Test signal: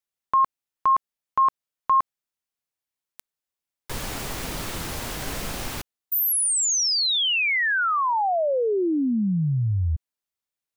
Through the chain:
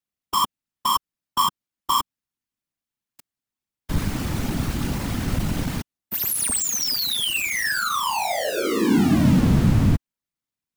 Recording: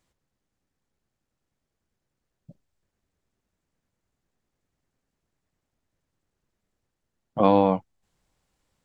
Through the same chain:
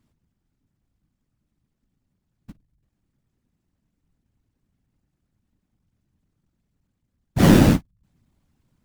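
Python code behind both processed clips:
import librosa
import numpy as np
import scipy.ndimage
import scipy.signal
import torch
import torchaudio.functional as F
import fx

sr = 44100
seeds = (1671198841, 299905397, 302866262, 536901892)

y = fx.halfwave_hold(x, sr)
y = fx.whisperise(y, sr, seeds[0])
y = fx.low_shelf_res(y, sr, hz=340.0, db=7.0, q=1.5)
y = y * 10.0 ** (-4.0 / 20.0)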